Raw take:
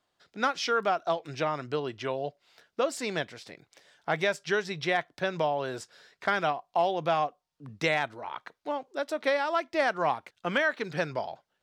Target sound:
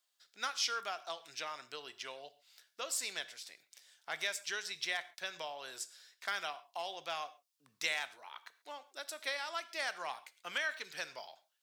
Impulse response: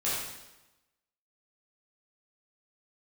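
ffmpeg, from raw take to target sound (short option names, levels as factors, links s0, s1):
-filter_complex "[0:a]aderivative,asplit=2[s0][s1];[1:a]atrim=start_sample=2205,afade=t=out:st=0.19:d=0.01,atrim=end_sample=8820[s2];[s1][s2]afir=irnorm=-1:irlink=0,volume=0.1[s3];[s0][s3]amix=inputs=2:normalize=0,volume=1.41"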